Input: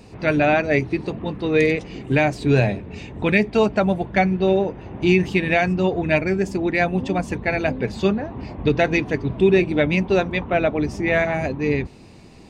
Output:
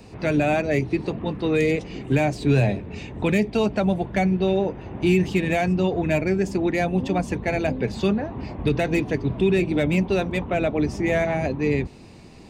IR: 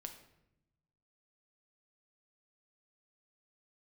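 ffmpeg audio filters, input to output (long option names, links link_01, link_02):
-filter_complex "[0:a]acrossover=split=200|1100|2000[link_01][link_02][link_03][link_04];[link_02]alimiter=limit=-15.5dB:level=0:latency=1[link_05];[link_03]acompressor=threshold=-41dB:ratio=6[link_06];[link_04]asoftclip=type=tanh:threshold=-27dB[link_07];[link_01][link_05][link_06][link_07]amix=inputs=4:normalize=0"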